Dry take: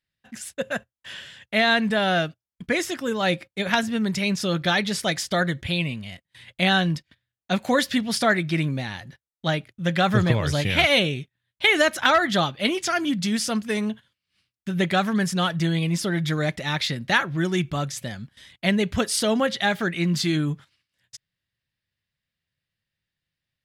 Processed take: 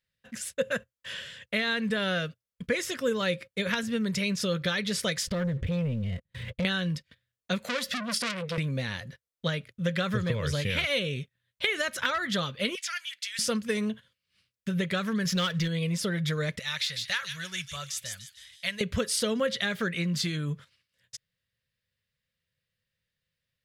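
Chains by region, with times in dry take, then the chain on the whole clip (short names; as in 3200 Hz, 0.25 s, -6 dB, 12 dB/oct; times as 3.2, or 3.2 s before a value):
5.27–6.65 tilt -3.5 dB/oct + compressor 3:1, threshold -34 dBFS + sample leveller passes 2
7.64–8.58 resonant low shelf 160 Hz -7.5 dB, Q 3 + comb 1.5 ms, depth 40% + core saturation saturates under 3800 Hz
12.75–13.39 ladder high-pass 1500 Hz, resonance 25% + three-band squash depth 40%
15.25–15.68 running mean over 5 samples + sample leveller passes 1 + high shelf 2800 Hz +12 dB
16.59–18.81 thin delay 0.15 s, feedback 31%, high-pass 3600 Hz, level -3.5 dB + de-esser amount 25% + passive tone stack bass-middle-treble 10-0-10
whole clip: dynamic EQ 680 Hz, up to -7 dB, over -39 dBFS, Q 2.8; compressor, threshold -25 dBFS; thirty-one-band EQ 315 Hz -11 dB, 500 Hz +9 dB, 800 Hz -11 dB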